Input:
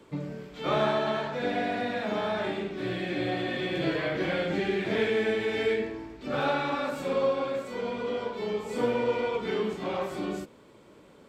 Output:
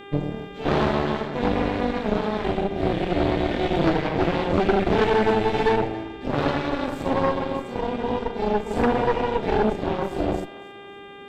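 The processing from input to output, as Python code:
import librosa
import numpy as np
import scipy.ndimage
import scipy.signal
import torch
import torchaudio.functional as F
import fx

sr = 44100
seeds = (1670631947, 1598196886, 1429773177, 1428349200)

y = fx.low_shelf_res(x, sr, hz=530.0, db=8.5, q=1.5)
y = fx.cheby_harmonics(y, sr, harmonics=(6,), levels_db=(-9,), full_scale_db=-7.0)
y = fx.echo_thinned(y, sr, ms=276, feedback_pct=42, hz=420.0, wet_db=-18.0)
y = fx.dmg_buzz(y, sr, base_hz=400.0, harmonics=9, level_db=-39.0, tilt_db=-4, odd_only=False)
y = y * 10.0 ** (-3.5 / 20.0)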